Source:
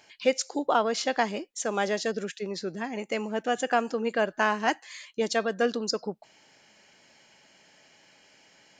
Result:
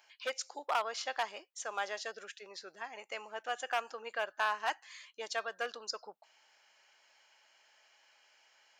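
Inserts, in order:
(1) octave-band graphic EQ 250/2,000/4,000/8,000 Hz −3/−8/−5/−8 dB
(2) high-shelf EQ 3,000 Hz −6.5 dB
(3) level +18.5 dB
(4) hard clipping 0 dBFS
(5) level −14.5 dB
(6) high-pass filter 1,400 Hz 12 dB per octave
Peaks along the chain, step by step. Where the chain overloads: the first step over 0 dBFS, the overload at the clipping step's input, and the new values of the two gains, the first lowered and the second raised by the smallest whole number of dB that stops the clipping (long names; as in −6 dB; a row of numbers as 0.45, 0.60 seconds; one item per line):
−12.5, −13.0, +5.5, 0.0, −14.5, −19.0 dBFS
step 3, 5.5 dB
step 3 +12.5 dB, step 5 −8.5 dB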